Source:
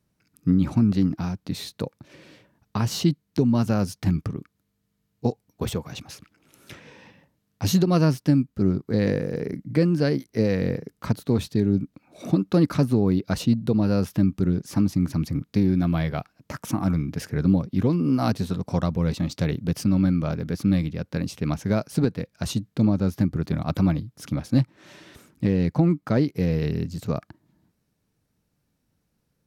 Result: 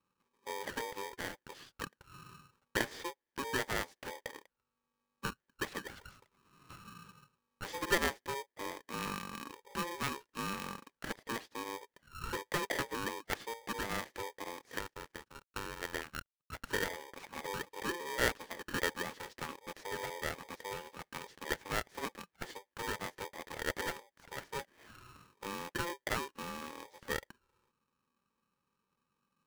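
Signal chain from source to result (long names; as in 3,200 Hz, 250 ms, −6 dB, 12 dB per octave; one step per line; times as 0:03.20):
0:14.76–0:16.52: power curve on the samples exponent 2
envelope filter 500–1,100 Hz, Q 5.2, up, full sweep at −26.5 dBFS
ring modulator with a square carrier 690 Hz
level +5.5 dB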